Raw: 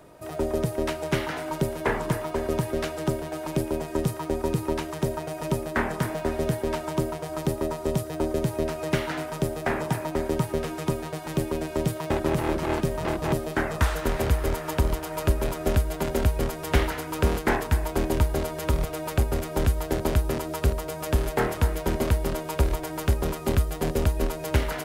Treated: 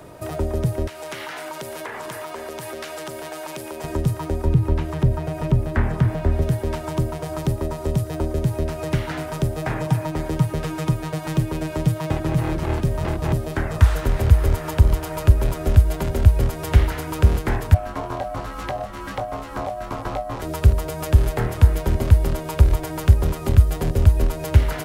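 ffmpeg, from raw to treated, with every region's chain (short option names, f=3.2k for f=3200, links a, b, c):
-filter_complex "[0:a]asettb=1/sr,asplit=3[a][b][c];[a]atrim=end=0.874[d];[b]atrim=start=0.87:end=3.84,asetpts=PTS-STARTPTS,afade=t=in:d=0.004:c=qsin,afade=t=out:st=2.966:d=0.004:c=qsin,highpass=f=980:p=1,acompressor=threshold=-35dB:ratio=5:attack=3.2:release=140:knee=1:detection=peak[e];[c]atrim=start=3.836[f];[d][e]acrossfade=d=0.004:c1=hsin:c2=qsin[g];[g][f]acrossfade=d=0.004:c1=qsin:c2=hsin,asettb=1/sr,asplit=3[h][i][j];[h]atrim=end=4.454[k];[i]atrim=start=4.45:end=6.42,asetpts=PTS-STARTPTS,afade=t=in:d=0.004:c=qsin,afade=t=out:st=1.966:d=0.004:c=qsin,acrossover=split=3700[l][m];[m]acompressor=threshold=-50dB:ratio=4:attack=1:release=60[n];[l][n]amix=inputs=2:normalize=0,lowshelf=f=190:g=7[o];[j]atrim=start=6.416[p];[k][o]acrossfade=d=0.004:c1=hsin:c2=qsin[q];[q][p]acrossfade=d=0.004:c1=qsin:c2=hsin,asettb=1/sr,asplit=3[r][s][t];[r]atrim=end=9.574[u];[s]atrim=start=9.57:end=12.58,asetpts=PTS-STARTPTS,afade=t=in:d=0.004:c=qsin,afade=t=out:st=3.006:d=0.004:c=qsin,highpass=41,aecho=1:1:6.4:0.51,atrim=end_sample=132741[v];[t]atrim=start=12.576[w];[u][v]acrossfade=d=0.004:c1=hsin:c2=qsin[x];[x][w]acrossfade=d=0.004:c1=qsin:c2=hsin,asettb=1/sr,asplit=3[y][z][aa];[y]atrim=end=17.744[ab];[z]atrim=start=17.74:end=20.42,asetpts=PTS-STARTPTS,afade=t=in:d=0.004:c=qsin,afade=t=out:st=2.676:d=0.004:c=qsin,acrossover=split=6400[ac][ad];[ad]acompressor=threshold=-49dB:ratio=4:attack=1:release=60[ae];[ac][ae]amix=inputs=2:normalize=0,flanger=delay=17.5:depth=4.6:speed=1.2,aeval=exprs='val(0)*sin(2*PI*670*n/s)':c=same[af];[aa]atrim=start=20.416[ag];[ab][af]acrossfade=d=0.004:c1=hsin:c2=qsin[ah];[ah][ag]acrossfade=d=0.004:c1=qsin:c2=hsin,acontrast=51,equalizer=f=98:w=1.9:g=6.5,acrossover=split=140[ai][aj];[aj]acompressor=threshold=-31dB:ratio=2.5[ak];[ai][ak]amix=inputs=2:normalize=0,volume=2dB"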